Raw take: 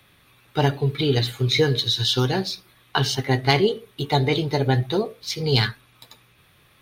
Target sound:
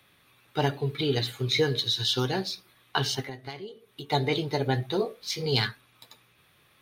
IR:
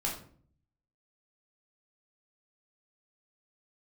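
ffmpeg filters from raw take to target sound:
-filter_complex "[0:a]lowshelf=f=100:g=-9.5,asettb=1/sr,asplit=3[a][b][c];[a]atrim=end=3.214[d];[b]atrim=start=3.21:end=4.1,asetpts=PTS-STARTPTS,afade=t=in:d=0.004:c=qsin,afade=t=out:st=0.886:d=0.004:c=qsin,acompressor=threshold=-33dB:ratio=6[e];[c]atrim=start=4.096[f];[d][e]acrossfade=d=0.004:c1=hsin:c2=qsin[g];[g][f]acrossfade=d=0.004:c1=qsin:c2=hsin,asettb=1/sr,asplit=3[h][i][j];[h]atrim=end=4.974[k];[i]atrim=start=4.97:end=5.46,asetpts=PTS-STARTPTS,afade=t=in:d=0.004:c=qsin,afade=t=out:st=0.486:d=0.004:c=qsin,asplit=2[l][m];[m]adelay=21,volume=-4dB[n];[l][n]amix=inputs=2:normalize=0,atrim=end_sample=21609[o];[j]atrim=start=5.456[p];[k][o]acrossfade=d=0.004:c1=hsin:c2=qsin[q];[q][p]acrossfade=d=0.004:c1=qsin:c2=hsin,volume=-4.5dB"

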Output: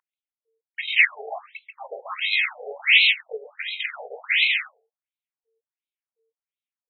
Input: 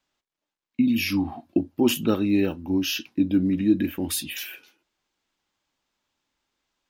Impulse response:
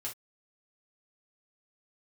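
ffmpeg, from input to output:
-filter_complex "[0:a]agate=range=-33dB:threshold=-45dB:ratio=3:detection=peak,equalizer=f=1k:t=o:w=0.33:g=-4,equalizer=f=2.5k:t=o:w=0.33:g=8,equalizer=f=4k:t=o:w=0.33:g=11,equalizer=f=8k:t=o:w=0.33:g=-5,acrossover=split=100|1900[a][b][c];[b]acompressor=threshold=-28dB:ratio=16[d];[a][d][c]amix=inputs=3:normalize=0,aeval=exprs='val(0)+0.00141*(sin(2*PI*60*n/s)+sin(2*PI*2*60*n/s)/2+sin(2*PI*3*60*n/s)/3+sin(2*PI*4*60*n/s)/4+sin(2*PI*5*60*n/s)/5)':c=same,asplit=4[e][f][g][h];[f]asetrate=33038,aresample=44100,atempo=1.33484,volume=-9dB[i];[g]asetrate=37084,aresample=44100,atempo=1.18921,volume=-1dB[j];[h]asetrate=66075,aresample=44100,atempo=0.66742,volume=-10dB[k];[e][i][j][k]amix=inputs=4:normalize=0,aecho=1:1:136:0.631,afftfilt=real='re*between(b*sr/1024,560*pow(3000/560,0.5+0.5*sin(2*PI*1.4*pts/sr))/1.41,560*pow(3000/560,0.5+0.5*sin(2*PI*1.4*pts/sr))*1.41)':imag='im*between(b*sr/1024,560*pow(3000/560,0.5+0.5*sin(2*PI*1.4*pts/sr))/1.41,560*pow(3000/560,0.5+0.5*sin(2*PI*1.4*pts/sr))*1.41)':win_size=1024:overlap=0.75,volume=8dB"

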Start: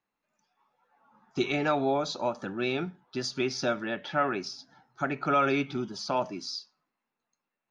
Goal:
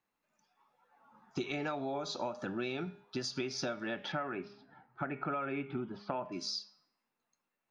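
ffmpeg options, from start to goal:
-filter_complex "[0:a]asettb=1/sr,asplit=3[a][b][c];[a]atrim=end=4.124[d];[b]atrim=start=4.12:end=6.32,asetpts=PTS-STARTPTS,afade=t=in:d=0.004:c=qsin,afade=t=out:st=2.196:d=0.004:c=qsin,lowpass=f=2.6k:w=0.5412,lowpass=f=2.6k:w=1.3066[e];[c]atrim=start=6.316[f];[d][e]acrossfade=d=0.004:c1=hsin:c2=qsin[g];[g][f]acrossfade=d=0.004:c1=qsin:c2=hsin,bandreject=f=203.7:t=h:w=4,bandreject=f=407.4:t=h:w=4,bandreject=f=611.1:t=h:w=4,bandreject=f=814.8:t=h:w=4,bandreject=f=1.0185k:t=h:w=4,bandreject=f=1.2222k:t=h:w=4,bandreject=f=1.4259k:t=h:w=4,bandreject=f=1.6296k:t=h:w=4,bandreject=f=1.8333k:t=h:w=4,bandreject=f=2.037k:t=h:w=4,bandreject=f=2.2407k:t=h:w=4,bandreject=f=2.4444k:t=h:w=4,bandreject=f=2.6481k:t=h:w=4,bandreject=f=2.8518k:t=h:w=4,bandreject=f=3.0555k:t=h:w=4,bandreject=f=3.2592k:t=h:w=4,bandreject=f=3.4629k:t=h:w=4,bandreject=f=3.6666k:t=h:w=4,bandreject=f=3.8703k:t=h:w=4,bandreject=f=4.074k:t=h:w=4,bandreject=f=4.2777k:t=h:w=4,bandreject=f=4.4814k:t=h:w=4,bandreject=f=4.6851k:t=h:w=4,bandreject=f=4.8888k:t=h:w=4,bandreject=f=5.0925k:t=h:w=4,bandreject=f=5.2962k:t=h:w=4,bandreject=f=5.4999k:t=h:w=4,bandreject=f=5.7036k:t=h:w=4,bandreject=f=5.9073k:t=h:w=4,acompressor=threshold=-33dB:ratio=10"

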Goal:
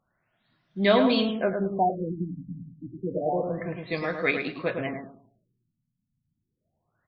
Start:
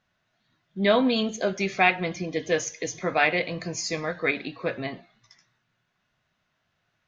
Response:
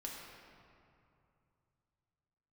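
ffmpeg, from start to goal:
-filter_complex "[0:a]asplit=2[a][b];[b]adelay=106,lowpass=f=2k:p=1,volume=-5.5dB,asplit=2[c][d];[d]adelay=106,lowpass=f=2k:p=1,volume=0.3,asplit=2[e][f];[f]adelay=106,lowpass=f=2k:p=1,volume=0.3,asplit=2[g][h];[h]adelay=106,lowpass=f=2k:p=1,volume=0.3[i];[a][c][e][g][i]amix=inputs=5:normalize=0,afftfilt=real='re*lt(b*sr/1024,260*pow(6600/260,0.5+0.5*sin(2*PI*0.29*pts/sr)))':imag='im*lt(b*sr/1024,260*pow(6600/260,0.5+0.5*sin(2*PI*0.29*pts/sr)))':win_size=1024:overlap=0.75"

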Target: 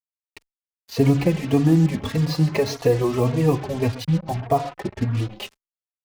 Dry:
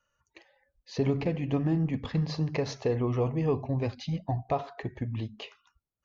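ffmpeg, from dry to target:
-filter_complex "[0:a]asettb=1/sr,asplit=3[a][b][c];[a]atrim=end=4.044[d];[b]atrim=start=4.04:end=4.97,asetpts=PTS-STARTPTS,afade=t=in:d=0.004:c=qsin,afade=t=out:st=0.926:d=0.004:c=qsin,lowpass=1.4k[e];[c]atrim=start=4.966[f];[d][e]acrossfade=d=0.004:c1=hsin:c2=qsin[g];[g][f]acrossfade=d=0.004:c1=qsin:c2=hsin,aecho=1:1:132|264:0.141|0.0311,acrusher=bits=6:mix=0:aa=0.5,dynaudnorm=f=120:g=3:m=11.5dB,asplit=2[h][i];[i]adelay=3.6,afreqshift=1.7[j];[h][j]amix=inputs=2:normalize=1"

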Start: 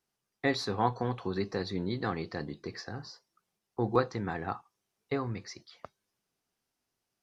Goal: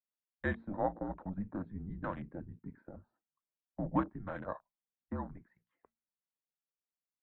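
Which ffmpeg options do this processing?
-af "bandreject=f=60:t=h:w=6,bandreject=f=120:t=h:w=6,bandreject=f=180:t=h:w=6,bandreject=f=240:t=h:w=6,bandreject=f=300:t=h:w=6,bandreject=f=360:t=h:w=6,bandreject=f=420:t=h:w=6,highpass=f=270:t=q:w=0.5412,highpass=f=270:t=q:w=1.307,lowpass=f=2.4k:t=q:w=0.5176,lowpass=f=2.4k:t=q:w=0.7071,lowpass=f=2.4k:t=q:w=1.932,afreqshift=-190,afwtdn=0.01,volume=-4dB"

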